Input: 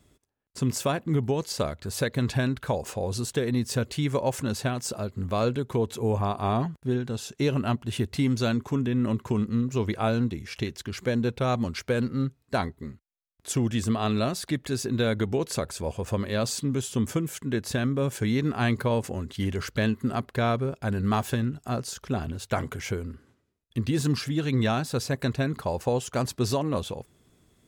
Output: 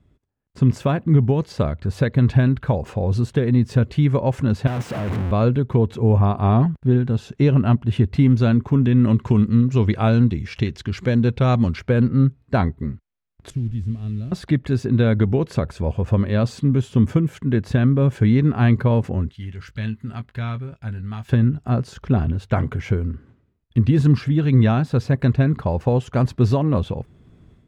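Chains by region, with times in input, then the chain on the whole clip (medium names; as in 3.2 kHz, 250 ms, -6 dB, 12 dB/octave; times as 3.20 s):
4.67–5.31 s: one-bit comparator + high-pass 90 Hz + peaking EQ 4.5 kHz -3.5 dB 0.65 oct
8.82–11.76 s: peaking EQ 6 kHz +8 dB 2.4 oct + upward compressor, threshold -33 dBFS
13.50–14.32 s: one-bit delta coder 64 kbps, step -29.5 dBFS + amplifier tone stack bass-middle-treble 10-0-1
19.29–21.29 s: amplifier tone stack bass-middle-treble 5-5-5 + band-stop 1.1 kHz, Q 11 + doubling 18 ms -10 dB
whole clip: tone controls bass +9 dB, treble -9 dB; level rider; treble shelf 6.2 kHz -12 dB; trim -3.5 dB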